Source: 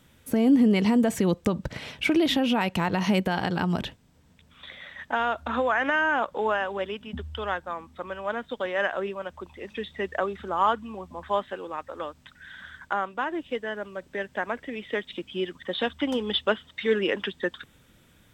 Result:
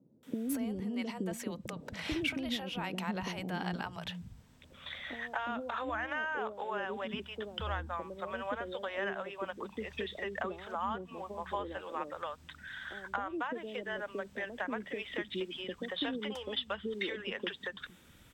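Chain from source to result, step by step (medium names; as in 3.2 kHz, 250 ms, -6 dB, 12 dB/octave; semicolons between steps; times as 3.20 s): compression 12:1, threshold -31 dBFS, peak gain reduction 16 dB; three bands offset in time mids, highs, lows 230/460 ms, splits 150/500 Hz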